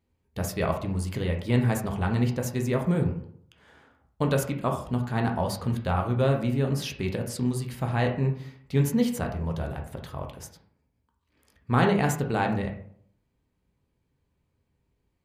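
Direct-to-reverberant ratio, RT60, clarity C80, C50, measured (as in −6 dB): 2.0 dB, 0.60 s, 12.0 dB, 8.0 dB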